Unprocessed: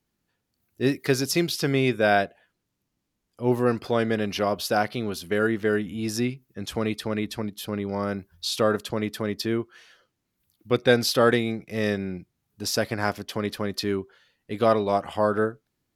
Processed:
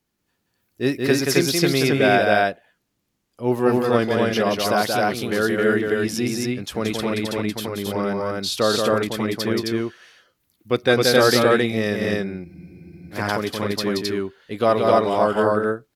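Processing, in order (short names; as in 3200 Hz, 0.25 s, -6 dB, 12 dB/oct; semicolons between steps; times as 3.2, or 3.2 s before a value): low shelf 180 Hz -4 dB; on a send: loudspeakers at several distances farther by 61 m -4 dB, 91 m -1 dB; on the sum: spectral freeze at 12.47, 0.67 s; gain +2.5 dB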